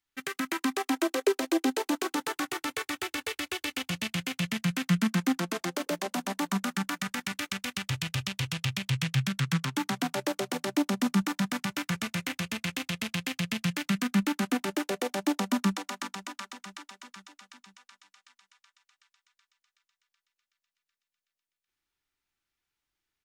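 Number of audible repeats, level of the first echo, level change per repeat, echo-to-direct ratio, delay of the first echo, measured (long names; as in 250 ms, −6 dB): 4, −18.0 dB, −5.5 dB, −16.5 dB, 504 ms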